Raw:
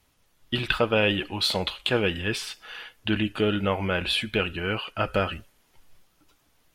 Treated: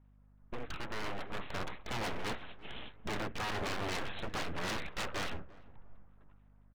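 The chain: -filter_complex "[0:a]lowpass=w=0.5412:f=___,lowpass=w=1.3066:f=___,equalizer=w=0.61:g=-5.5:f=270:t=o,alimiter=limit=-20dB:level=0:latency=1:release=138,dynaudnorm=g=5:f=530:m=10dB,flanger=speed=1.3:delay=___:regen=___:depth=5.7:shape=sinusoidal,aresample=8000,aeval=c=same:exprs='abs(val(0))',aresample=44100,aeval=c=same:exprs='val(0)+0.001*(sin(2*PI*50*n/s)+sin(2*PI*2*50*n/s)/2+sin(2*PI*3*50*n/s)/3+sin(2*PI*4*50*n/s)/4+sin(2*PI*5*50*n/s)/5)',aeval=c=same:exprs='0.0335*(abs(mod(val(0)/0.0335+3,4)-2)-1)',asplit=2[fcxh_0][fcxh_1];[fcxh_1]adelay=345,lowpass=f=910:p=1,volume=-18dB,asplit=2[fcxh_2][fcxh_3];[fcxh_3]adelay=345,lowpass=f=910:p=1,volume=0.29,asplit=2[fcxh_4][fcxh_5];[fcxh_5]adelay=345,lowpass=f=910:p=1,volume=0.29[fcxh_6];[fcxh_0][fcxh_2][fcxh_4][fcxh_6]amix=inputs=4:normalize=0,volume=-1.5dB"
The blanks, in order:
1500, 1500, 6.8, -80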